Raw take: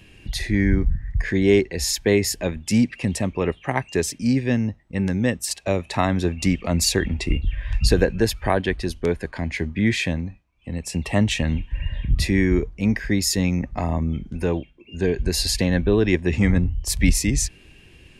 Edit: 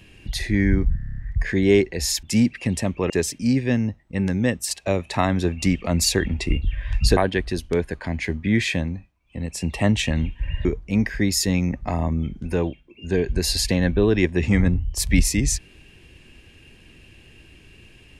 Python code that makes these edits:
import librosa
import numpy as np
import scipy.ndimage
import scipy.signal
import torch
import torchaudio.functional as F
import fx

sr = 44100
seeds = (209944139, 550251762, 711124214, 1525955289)

y = fx.edit(x, sr, fx.stutter(start_s=0.97, slice_s=0.03, count=8),
    fx.cut(start_s=2.02, length_s=0.59),
    fx.cut(start_s=3.48, length_s=0.42),
    fx.cut(start_s=7.97, length_s=0.52),
    fx.cut(start_s=11.97, length_s=0.58), tone=tone)